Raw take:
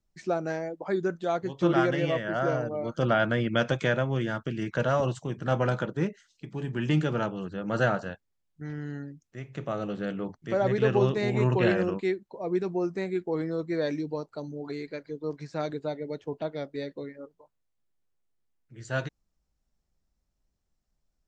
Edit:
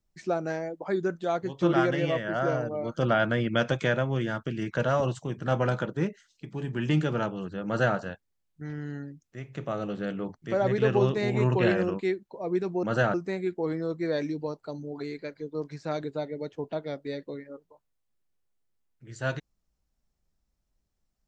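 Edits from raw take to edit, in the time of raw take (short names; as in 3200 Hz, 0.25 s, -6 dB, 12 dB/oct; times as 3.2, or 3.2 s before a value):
7.66–7.97 copy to 12.83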